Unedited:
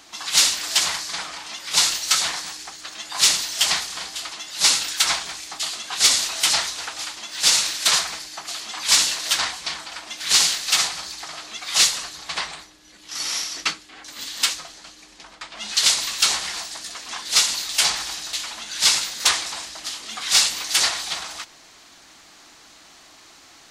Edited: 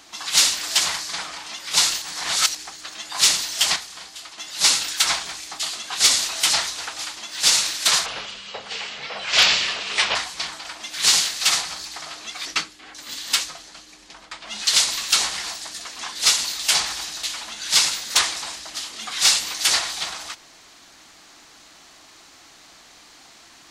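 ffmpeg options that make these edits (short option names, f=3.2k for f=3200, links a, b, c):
-filter_complex "[0:a]asplit=8[a][b][c][d][e][f][g][h];[a]atrim=end=2.022[i];[b]atrim=start=2.018:end=2.552,asetpts=PTS-STARTPTS,areverse[j];[c]atrim=start=2.548:end=3.762[k];[d]atrim=start=3.758:end=4.382,asetpts=PTS-STARTPTS,volume=-7dB[l];[e]atrim=start=4.378:end=8.064[m];[f]atrim=start=8.06:end=9.42,asetpts=PTS-STARTPTS,asetrate=28665,aresample=44100[n];[g]atrim=start=9.416:end=11.722[o];[h]atrim=start=13.548[p];[i][j]acrossfade=d=0.004:c1=hsin:c2=hsin[q];[q][k]acrossfade=d=0.004:c1=hsin:c2=hsin[r];[r][l]acrossfade=d=0.004:c1=hsin:c2=hsin[s];[s][m]acrossfade=d=0.004:c1=hsin:c2=hsin[t];[t][n]acrossfade=d=0.004:c1=hsin:c2=hsin[u];[u][o]acrossfade=d=0.004:c1=hsin:c2=hsin[v];[v][p]acrossfade=d=0.004:c1=hsin:c2=hsin"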